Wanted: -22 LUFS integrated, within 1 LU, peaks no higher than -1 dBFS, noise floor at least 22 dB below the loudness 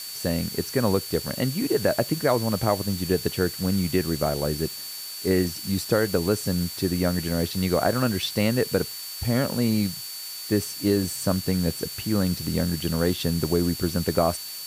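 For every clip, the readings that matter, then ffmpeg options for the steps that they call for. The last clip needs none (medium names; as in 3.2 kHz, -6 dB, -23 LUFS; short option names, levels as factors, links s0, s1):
steady tone 4.5 kHz; tone level -37 dBFS; noise floor -36 dBFS; noise floor target -47 dBFS; loudness -25.0 LUFS; peak level -8.5 dBFS; loudness target -22.0 LUFS
-> -af "bandreject=f=4500:w=30"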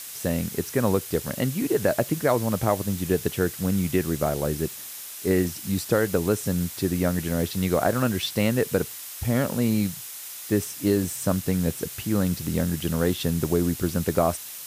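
steady tone not found; noise floor -38 dBFS; noise floor target -48 dBFS
-> -af "afftdn=nr=10:nf=-38"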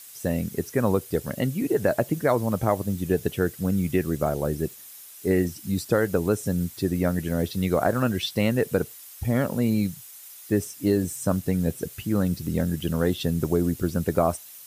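noise floor -45 dBFS; noise floor target -48 dBFS
-> -af "afftdn=nr=6:nf=-45"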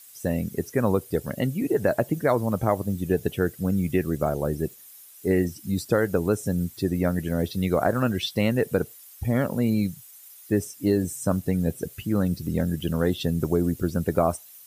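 noise floor -48 dBFS; loudness -25.5 LUFS; peak level -9.0 dBFS; loudness target -22.0 LUFS
-> -af "volume=1.5"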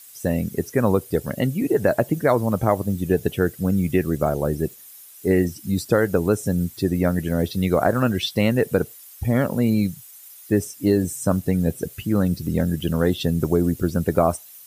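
loudness -22.0 LUFS; peak level -5.5 dBFS; noise floor -45 dBFS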